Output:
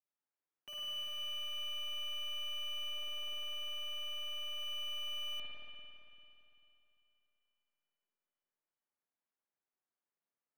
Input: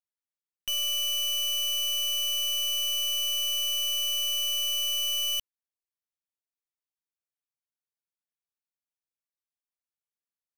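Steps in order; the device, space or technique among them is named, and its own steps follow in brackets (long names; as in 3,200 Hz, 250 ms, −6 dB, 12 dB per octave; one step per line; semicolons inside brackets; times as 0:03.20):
0:02.90–0:04.59: parametric band 400 Hz +6 dB 1.4 octaves
DJ mixer with the lows and highs turned down (three-way crossover with the lows and the highs turned down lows −18 dB, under 160 Hz, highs −20 dB, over 2,100 Hz; brickwall limiter −39 dBFS, peak gain reduction 7 dB)
spring reverb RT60 3 s, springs 49/56 ms, chirp 40 ms, DRR −6 dB
level −2 dB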